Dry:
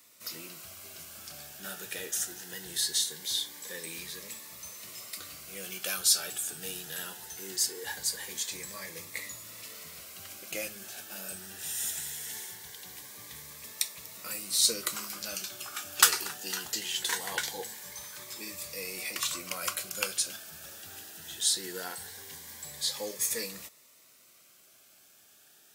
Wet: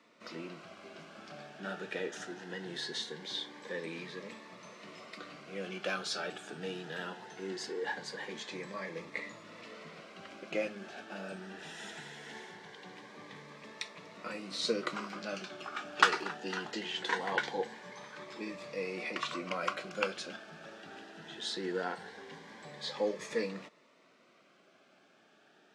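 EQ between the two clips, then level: high-pass 170 Hz 24 dB/octave; tape spacing loss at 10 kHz 39 dB; +8.0 dB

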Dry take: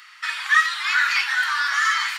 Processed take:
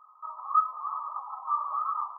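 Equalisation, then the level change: brick-wall FIR low-pass 1.3 kHz; 0.0 dB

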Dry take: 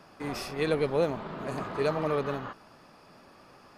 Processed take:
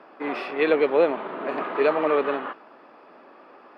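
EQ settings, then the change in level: high-pass 280 Hz 24 dB/octave; dynamic bell 2.7 kHz, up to +7 dB, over -50 dBFS, Q 1; distance through air 460 m; +8.5 dB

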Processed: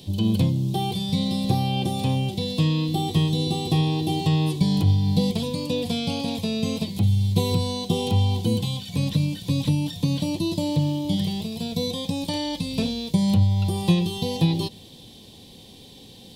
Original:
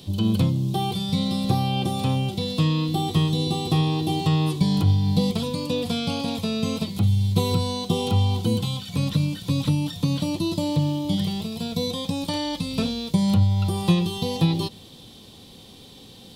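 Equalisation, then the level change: peaking EQ 1.3 kHz -13.5 dB 0.39 oct; 0.0 dB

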